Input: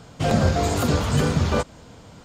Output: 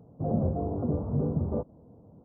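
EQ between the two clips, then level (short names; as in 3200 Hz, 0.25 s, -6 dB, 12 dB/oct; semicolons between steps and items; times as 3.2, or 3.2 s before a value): Gaussian blur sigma 13 samples; HPF 130 Hz 6 dB/oct; -4.0 dB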